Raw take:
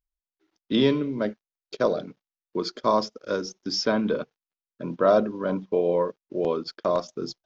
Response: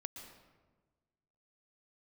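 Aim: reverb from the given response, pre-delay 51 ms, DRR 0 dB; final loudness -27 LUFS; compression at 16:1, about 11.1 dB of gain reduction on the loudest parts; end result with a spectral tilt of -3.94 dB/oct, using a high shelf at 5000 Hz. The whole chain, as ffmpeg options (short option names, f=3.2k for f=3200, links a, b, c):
-filter_complex "[0:a]highshelf=f=5k:g=6,acompressor=threshold=-25dB:ratio=16,asplit=2[a][b];[1:a]atrim=start_sample=2205,adelay=51[c];[b][c]afir=irnorm=-1:irlink=0,volume=3dB[d];[a][d]amix=inputs=2:normalize=0,volume=2dB"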